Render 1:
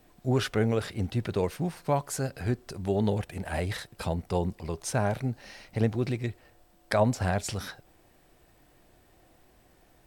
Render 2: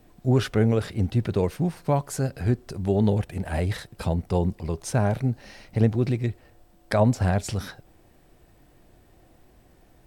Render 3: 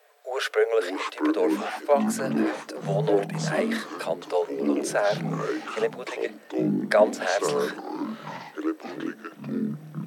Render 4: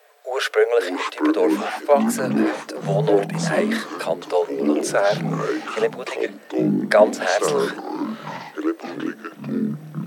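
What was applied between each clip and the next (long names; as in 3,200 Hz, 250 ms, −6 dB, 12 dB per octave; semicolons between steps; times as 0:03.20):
low-shelf EQ 440 Hz +7 dB
Chebyshev high-pass with heavy ripple 420 Hz, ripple 6 dB; delay with pitch and tempo change per echo 418 ms, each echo −6 semitones, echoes 3; level +6.5 dB
wow of a warped record 45 rpm, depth 100 cents; level +5 dB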